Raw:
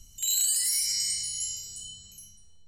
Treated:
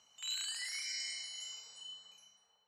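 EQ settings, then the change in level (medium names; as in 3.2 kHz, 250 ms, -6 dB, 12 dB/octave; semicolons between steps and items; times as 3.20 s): ladder band-pass 1.1 kHz, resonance 30%; +17.0 dB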